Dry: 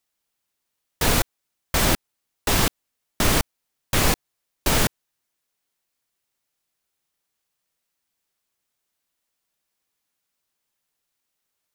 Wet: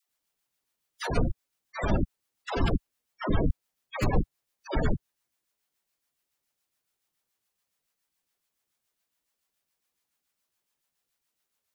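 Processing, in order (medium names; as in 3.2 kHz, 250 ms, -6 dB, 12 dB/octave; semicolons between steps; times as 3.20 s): spectral gate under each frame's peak -15 dB strong; tremolo 7.1 Hz, depth 48%; phase dispersion lows, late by 97 ms, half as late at 570 Hz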